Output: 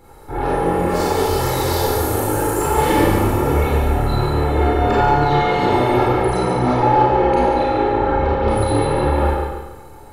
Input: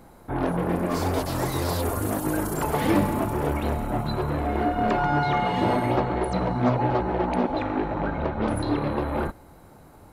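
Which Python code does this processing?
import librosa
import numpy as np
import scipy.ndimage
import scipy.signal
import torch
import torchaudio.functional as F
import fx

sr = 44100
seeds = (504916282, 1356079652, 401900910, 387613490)

y = x + 0.61 * np.pad(x, (int(2.3 * sr / 1000.0), 0))[:len(x)]
y = fx.echo_feedback(y, sr, ms=142, feedback_pct=39, wet_db=-6)
y = fx.rev_schroeder(y, sr, rt60_s=0.81, comb_ms=28, drr_db=-6.5)
y = y * librosa.db_to_amplitude(-1.0)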